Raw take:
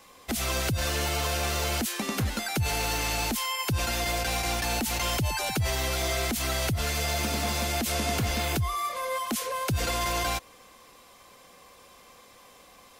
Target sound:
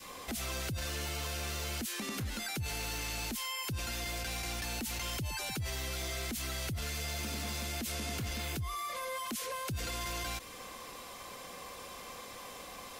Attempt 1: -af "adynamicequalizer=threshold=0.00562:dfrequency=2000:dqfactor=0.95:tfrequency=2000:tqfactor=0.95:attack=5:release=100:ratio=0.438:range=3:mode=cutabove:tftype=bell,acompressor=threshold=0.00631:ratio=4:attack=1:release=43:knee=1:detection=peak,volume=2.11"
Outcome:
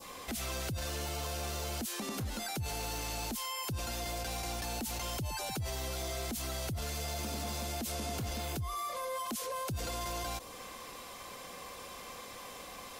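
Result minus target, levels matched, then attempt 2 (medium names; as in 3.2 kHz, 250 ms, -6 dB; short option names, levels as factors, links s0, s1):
2 kHz band -3.5 dB
-af "adynamicequalizer=threshold=0.00562:dfrequency=740:dqfactor=0.95:tfrequency=740:tqfactor=0.95:attack=5:release=100:ratio=0.438:range=3:mode=cutabove:tftype=bell,acompressor=threshold=0.00631:ratio=4:attack=1:release=43:knee=1:detection=peak,volume=2.11"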